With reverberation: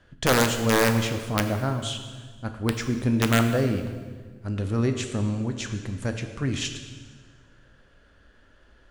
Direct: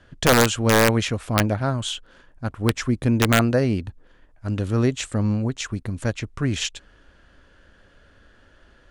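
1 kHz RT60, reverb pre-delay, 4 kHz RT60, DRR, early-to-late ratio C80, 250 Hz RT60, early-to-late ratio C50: 1.4 s, 10 ms, 1.4 s, 6.0 dB, 9.5 dB, 1.9 s, 8.0 dB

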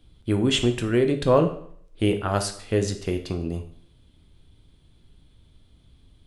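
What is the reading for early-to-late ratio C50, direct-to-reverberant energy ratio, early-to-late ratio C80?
11.0 dB, 6.0 dB, 14.0 dB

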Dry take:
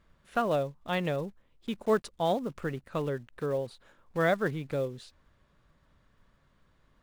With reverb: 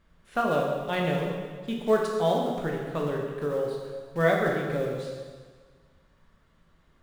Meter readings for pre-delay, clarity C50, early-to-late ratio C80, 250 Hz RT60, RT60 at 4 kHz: 6 ms, 1.5 dB, 3.0 dB, 1.6 s, 1.5 s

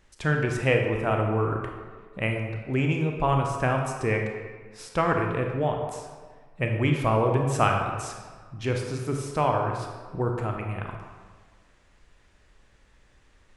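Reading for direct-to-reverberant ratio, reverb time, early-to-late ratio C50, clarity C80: 2.0 dB, 1.5 s, 3.5 dB, 5.5 dB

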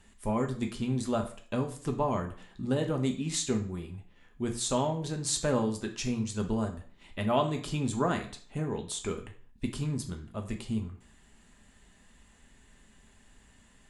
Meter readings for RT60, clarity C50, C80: 0.50 s, 10.5 dB, 15.0 dB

